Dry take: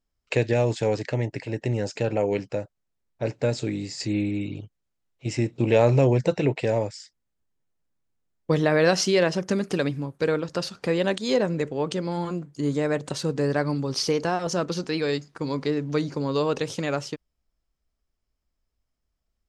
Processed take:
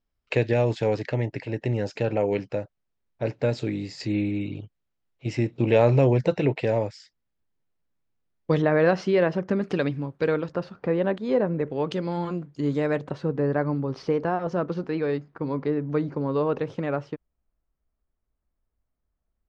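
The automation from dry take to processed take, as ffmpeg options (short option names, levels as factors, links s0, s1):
-af "asetnsamples=n=441:p=0,asendcmd='8.62 lowpass f 1900;9.62 lowpass f 3300;10.52 lowpass f 1500;11.7 lowpass f 3600;13.04 lowpass f 1600',lowpass=4100"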